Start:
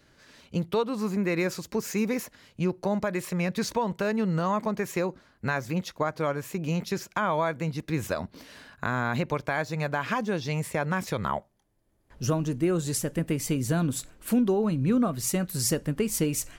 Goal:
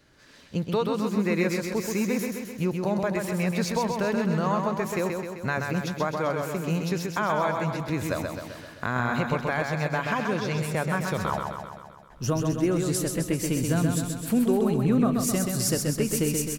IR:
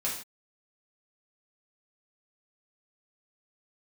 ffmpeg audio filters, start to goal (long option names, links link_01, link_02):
-af "aecho=1:1:130|260|390|520|650|780|910|1040|1170:0.596|0.357|0.214|0.129|0.0772|0.0463|0.0278|0.0167|0.01"